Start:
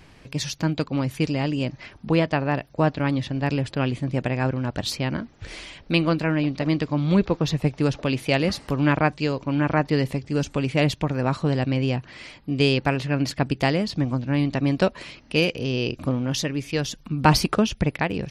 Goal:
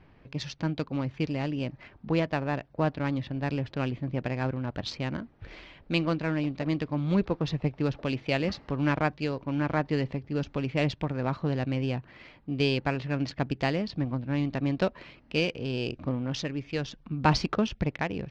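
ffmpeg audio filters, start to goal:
-af "adynamicsmooth=sensitivity=4:basefreq=2.3k,lowpass=f=6.1k:w=0.5412,lowpass=f=6.1k:w=1.3066,volume=-6dB"

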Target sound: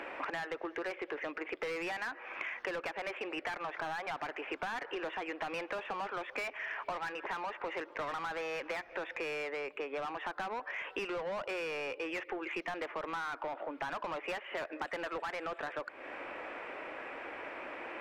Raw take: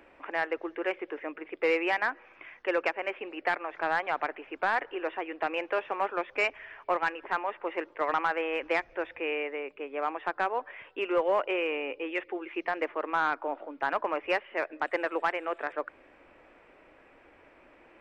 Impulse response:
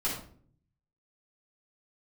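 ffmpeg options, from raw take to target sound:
-filter_complex "[0:a]asplit=2[a][b];[b]highpass=f=720:p=1,volume=23dB,asoftclip=type=tanh:threshold=-15dB[c];[a][c]amix=inputs=2:normalize=0,lowpass=f=2.9k:p=1,volume=-6dB,acompressor=threshold=-36dB:ratio=12"

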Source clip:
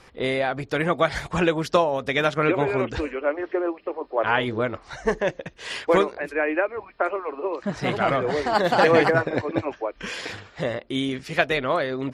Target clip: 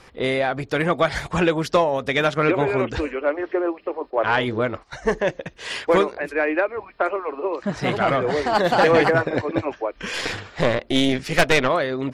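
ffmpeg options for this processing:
-filter_complex "[0:a]acontrast=83,asplit=3[a][b][c];[a]afade=t=out:st=3.93:d=0.02[d];[b]agate=range=-15dB:threshold=-30dB:ratio=16:detection=peak,afade=t=in:st=3.93:d=0.02,afade=t=out:st=5.01:d=0.02[e];[c]afade=t=in:st=5.01:d=0.02[f];[d][e][f]amix=inputs=3:normalize=0,asplit=3[g][h][i];[g]afade=t=out:st=10.13:d=0.02[j];[h]aeval=exprs='0.841*(cos(1*acos(clip(val(0)/0.841,-1,1)))-cos(1*PI/2))+0.0944*(cos(5*acos(clip(val(0)/0.841,-1,1)))-cos(5*PI/2))+0.211*(cos(6*acos(clip(val(0)/0.841,-1,1)))-cos(6*PI/2))':c=same,afade=t=in:st=10.13:d=0.02,afade=t=out:st=11.67:d=0.02[k];[i]afade=t=in:st=11.67:d=0.02[l];[j][k][l]amix=inputs=3:normalize=0,volume=-4.5dB"

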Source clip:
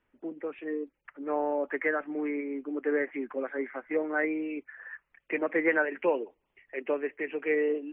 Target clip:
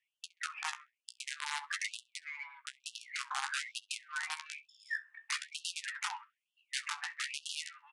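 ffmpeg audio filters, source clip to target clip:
-filter_complex "[0:a]afftdn=nr=13:nf=-45,equalizer=f=2.4k:t=o:w=0.92:g=-3,acrossover=split=1000|2400[a][b][c];[a]acompressor=threshold=-33dB:ratio=4[d];[b]acompressor=threshold=-42dB:ratio=4[e];[d][e][c]amix=inputs=3:normalize=0,alimiter=level_in=3dB:limit=-24dB:level=0:latency=1:release=71,volume=-3dB,acompressor=threshold=-43dB:ratio=8,asplit=2[f][g];[g]adelay=22,volume=-8.5dB[h];[f][h]amix=inputs=2:normalize=0,aeval=exprs='(mod(75*val(0)+1,2)-1)/75':c=same,aeval=exprs='0.0133*(cos(1*acos(clip(val(0)/0.0133,-1,1)))-cos(1*PI/2))+0.000841*(cos(5*acos(clip(val(0)/0.0133,-1,1)))-cos(5*PI/2))+0.000211*(cos(8*acos(clip(val(0)/0.0133,-1,1)))-cos(8*PI/2))':c=same,flanger=delay=8.8:depth=8.9:regen=31:speed=0.5:shape=triangular,asplit=2[i][j];[j]adelay=66,lowpass=f=1.9k:p=1,volume=-16.5dB,asplit=2[k][l];[l]adelay=66,lowpass=f=1.9k:p=1,volume=0.43,asplit=2[m][n];[n]adelay=66,lowpass=f=1.9k:p=1,volume=0.43,asplit=2[o][p];[p]adelay=66,lowpass=f=1.9k:p=1,volume=0.43[q];[k][m][o][q]amix=inputs=4:normalize=0[r];[i][r]amix=inputs=2:normalize=0,aresample=22050,aresample=44100,afftfilt=real='re*gte(b*sr/1024,730*pow(2700/730,0.5+0.5*sin(2*PI*1.1*pts/sr)))':imag='im*gte(b*sr/1024,730*pow(2700/730,0.5+0.5*sin(2*PI*1.1*pts/sr)))':win_size=1024:overlap=0.75,volume=15.5dB"

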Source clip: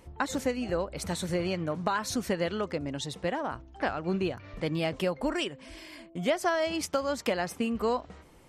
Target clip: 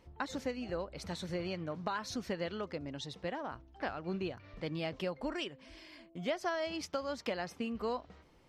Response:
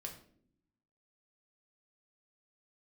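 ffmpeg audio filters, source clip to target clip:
-af "highshelf=f=6.6k:t=q:w=1.5:g=-7.5,volume=-8dB"

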